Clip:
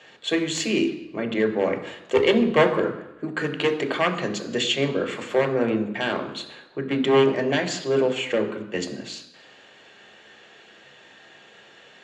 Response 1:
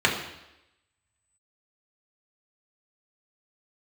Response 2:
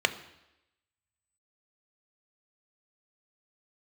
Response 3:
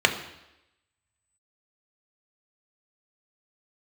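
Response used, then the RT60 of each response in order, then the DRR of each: 3; 0.90, 0.90, 0.90 s; -2.5, 9.0, 4.0 dB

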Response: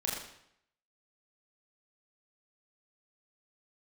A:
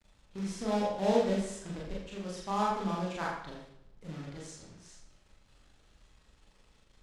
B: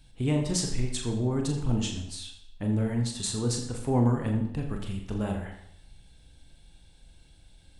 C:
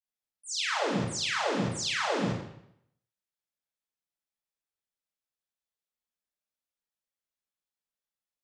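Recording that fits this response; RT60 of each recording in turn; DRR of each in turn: A; 0.70, 0.70, 0.70 s; -4.5, 2.0, -12.5 dB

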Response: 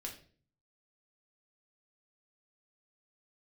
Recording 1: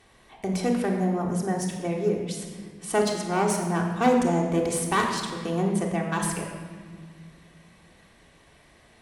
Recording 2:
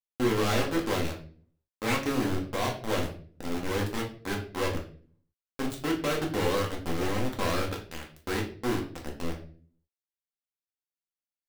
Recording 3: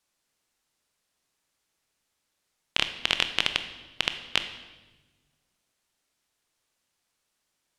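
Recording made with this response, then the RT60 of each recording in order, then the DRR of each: 2; 1.8, 0.45, 1.2 s; -0.5, -0.5, 8.5 dB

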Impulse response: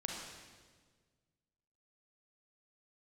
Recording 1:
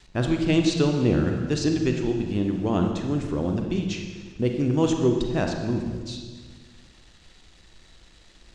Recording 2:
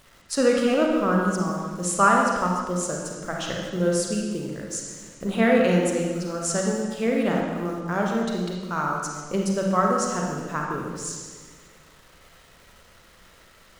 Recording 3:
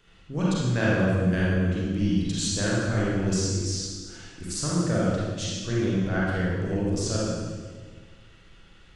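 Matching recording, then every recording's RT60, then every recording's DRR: 2; 1.6, 1.6, 1.6 s; 3.0, -1.0, -7.0 dB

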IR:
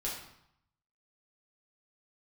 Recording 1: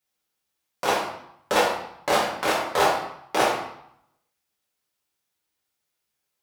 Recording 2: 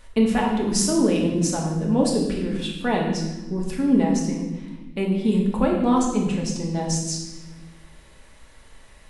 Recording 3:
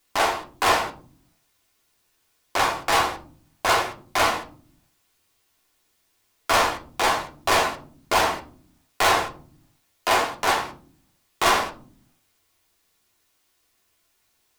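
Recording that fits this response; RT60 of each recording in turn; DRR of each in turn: 1; 0.75 s, not exponential, 0.50 s; -6.0, -1.5, 1.5 dB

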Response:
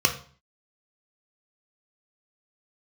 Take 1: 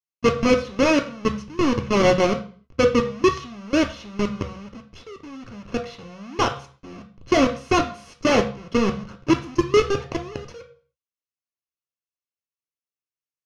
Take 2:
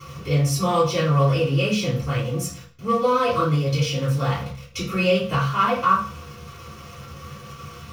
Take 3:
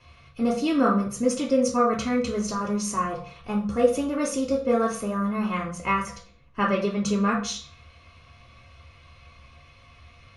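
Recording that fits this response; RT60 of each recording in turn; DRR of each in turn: 1; 0.45, 0.45, 0.45 s; 3.5, -11.0, -3.5 dB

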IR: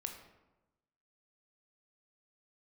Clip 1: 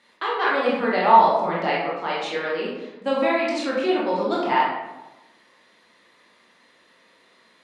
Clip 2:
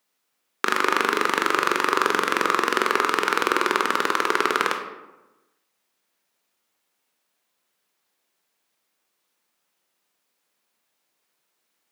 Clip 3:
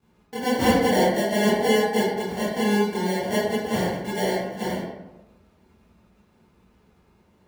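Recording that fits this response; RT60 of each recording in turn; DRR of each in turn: 2; 1.0, 1.0, 1.0 s; -6.0, 3.5, -12.5 dB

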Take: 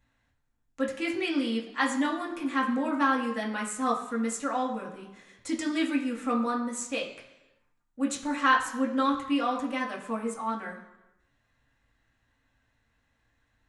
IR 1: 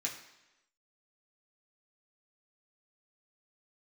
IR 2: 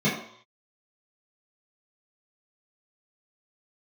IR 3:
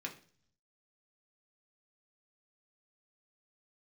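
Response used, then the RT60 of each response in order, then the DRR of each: 1; 1.0, 0.65, 0.45 s; -3.0, -11.0, 0.0 dB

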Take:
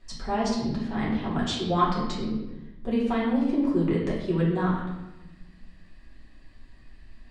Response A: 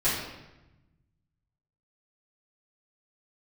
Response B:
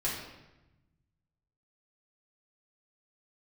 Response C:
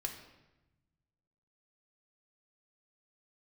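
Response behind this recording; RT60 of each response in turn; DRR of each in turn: B; 1.0, 1.0, 1.0 s; -12.0, -6.5, 3.0 dB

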